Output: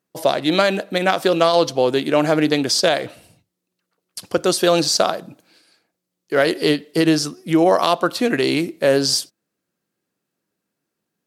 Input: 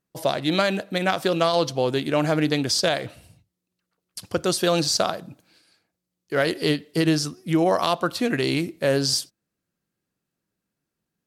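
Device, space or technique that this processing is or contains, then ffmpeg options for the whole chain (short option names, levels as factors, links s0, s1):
filter by subtraction: -filter_complex "[0:a]asplit=2[s0][s1];[s1]lowpass=370,volume=-1[s2];[s0][s2]amix=inputs=2:normalize=0,volume=1.58"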